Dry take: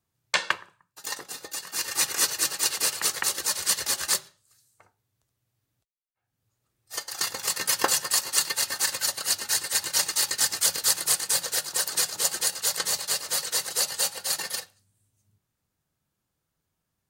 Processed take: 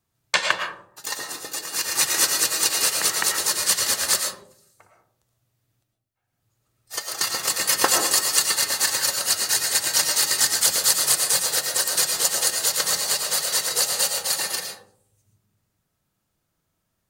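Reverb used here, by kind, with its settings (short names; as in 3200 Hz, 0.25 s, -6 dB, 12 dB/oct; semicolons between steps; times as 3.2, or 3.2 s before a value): digital reverb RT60 0.63 s, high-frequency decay 0.3×, pre-delay 70 ms, DRR 3 dB; gain +3.5 dB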